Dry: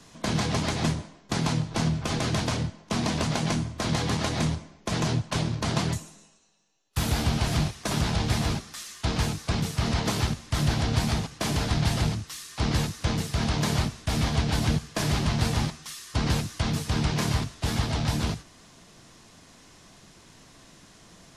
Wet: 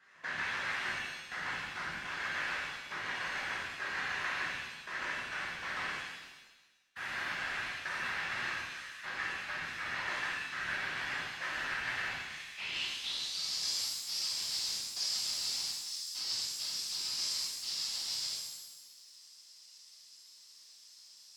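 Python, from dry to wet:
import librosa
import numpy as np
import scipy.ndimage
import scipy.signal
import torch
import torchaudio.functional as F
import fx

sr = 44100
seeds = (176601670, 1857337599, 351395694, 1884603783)

y = fx.filter_sweep_bandpass(x, sr, from_hz=1700.0, to_hz=5000.0, start_s=12.11, end_s=13.47, q=5.6)
y = fx.whisperise(y, sr, seeds[0])
y = fx.rev_shimmer(y, sr, seeds[1], rt60_s=1.2, semitones=7, shimmer_db=-8, drr_db=-6.0)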